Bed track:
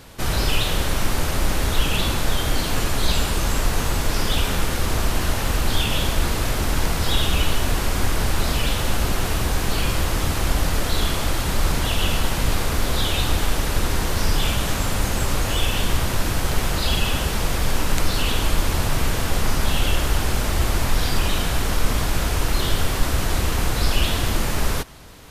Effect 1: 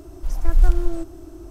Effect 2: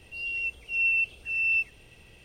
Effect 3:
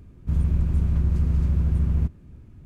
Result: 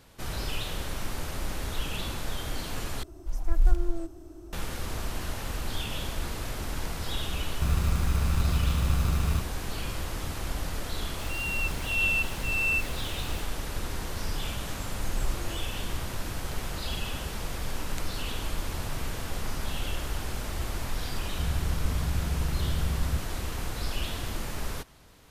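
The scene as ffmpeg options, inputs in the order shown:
ffmpeg -i bed.wav -i cue0.wav -i cue1.wav -i cue2.wav -filter_complex "[1:a]asplit=2[link_01][link_02];[3:a]asplit=2[link_03][link_04];[0:a]volume=-12dB[link_05];[link_03]acrusher=samples=35:mix=1:aa=0.000001[link_06];[2:a]aeval=exprs='val(0)+0.5*0.015*sgn(val(0))':channel_layout=same[link_07];[link_05]asplit=2[link_08][link_09];[link_08]atrim=end=3.034[link_10];[link_01]atrim=end=1.5,asetpts=PTS-STARTPTS,volume=-6.5dB[link_11];[link_09]atrim=start=4.526[link_12];[link_06]atrim=end=2.65,asetpts=PTS-STARTPTS,volume=-5dB,afade=type=in:duration=0.004:curve=hsin,afade=type=out:start_time=2.646:duration=0.004:curve=hsin,adelay=7330[link_13];[link_07]atrim=end=2.24,asetpts=PTS-STARTPTS,volume=-3dB,afade=type=in:duration=0.004:curve=hsin,afade=type=out:start_time=2.236:duration=0.004:curve=hsin,adelay=11180[link_14];[link_02]atrim=end=1.5,asetpts=PTS-STARTPTS,volume=-16.5dB,afade=type=in:duration=0.004:curve=hsin,afade=type=out:start_time=1.496:duration=0.004:curve=hsin,adelay=643860S[link_15];[link_04]atrim=end=2.65,asetpts=PTS-STARTPTS,volume=-8.5dB,afade=type=in:duration=0.004:curve=hsin,afade=type=out:start_time=2.646:duration=0.004:curve=hsin,adelay=21110[link_16];[link_10][link_11]acrossfade=duration=0.004:curve1=hsin:curve2=hsin[link_17];[link_17][link_12]acrossfade=duration=0.004:curve1=hsin:curve2=hsin[link_18];[link_18][link_13][link_14][link_15][link_16]amix=inputs=5:normalize=0" out.wav

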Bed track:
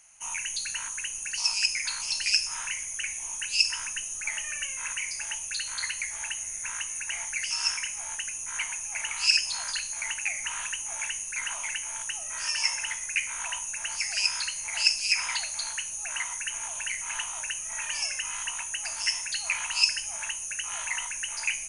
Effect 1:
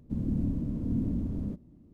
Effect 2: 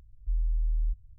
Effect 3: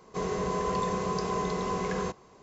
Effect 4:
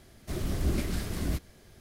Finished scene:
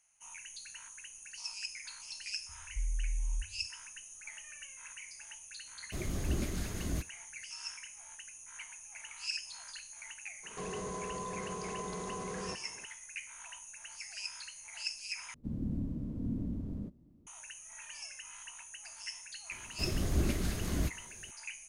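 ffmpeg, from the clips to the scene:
ffmpeg -i bed.wav -i cue0.wav -i cue1.wav -i cue2.wav -i cue3.wav -filter_complex "[4:a]asplit=2[link_01][link_02];[0:a]volume=-15.5dB[link_03];[2:a]equalizer=frequency=79:width=1.5:gain=13[link_04];[link_01]agate=range=-16dB:threshold=-50dB:ratio=16:release=100:detection=peak[link_05];[3:a]alimiter=level_in=6.5dB:limit=-24dB:level=0:latency=1:release=31,volume=-6.5dB[link_06];[link_03]asplit=2[link_07][link_08];[link_07]atrim=end=15.344[link_09];[1:a]atrim=end=1.93,asetpts=PTS-STARTPTS,volume=-6.5dB[link_10];[link_08]atrim=start=17.266[link_11];[link_04]atrim=end=1.18,asetpts=PTS-STARTPTS,volume=-9dB,afade=type=in:duration=0.004:curve=hsin,afade=type=out:start_time=1.176:duration=0.004:curve=hsin,adelay=2490[link_12];[link_05]atrim=end=1.8,asetpts=PTS-STARTPTS,volume=-5dB,afade=type=in:duration=0.004:curve=hsin,afade=type=out:start_time=1.796:duration=0.004:curve=hsin,adelay=5640[link_13];[link_06]atrim=end=2.42,asetpts=PTS-STARTPTS,volume=-2.5dB,afade=type=in:duration=0.004:curve=hsin,afade=type=out:start_time=2.416:duration=0.004:curve=hsin,adelay=10430[link_14];[link_02]atrim=end=1.8,asetpts=PTS-STARTPTS,volume=-2dB,afade=type=in:duration=0.004:curve=hsin,afade=type=out:start_time=1.796:duration=0.004:curve=hsin,adelay=19510[link_15];[link_09][link_10]acrossfade=duration=0.004:curve1=hsin:curve2=hsin[link_16];[link_16][link_11]acrossfade=duration=0.004:curve1=hsin:curve2=hsin[link_17];[link_17][link_12][link_13][link_14][link_15]amix=inputs=5:normalize=0" out.wav

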